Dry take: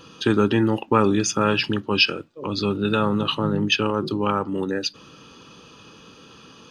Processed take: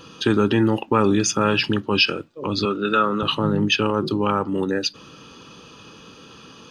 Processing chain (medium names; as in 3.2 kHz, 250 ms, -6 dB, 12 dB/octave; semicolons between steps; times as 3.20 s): in parallel at 0 dB: peak limiter -13 dBFS, peak gain reduction 9.5 dB; 2.65–3.23 s: on the sum: cabinet simulation 260–7600 Hz, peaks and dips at 840 Hz -8 dB, 1.3 kHz +8 dB, 4.3 kHz -5 dB; trim -3.5 dB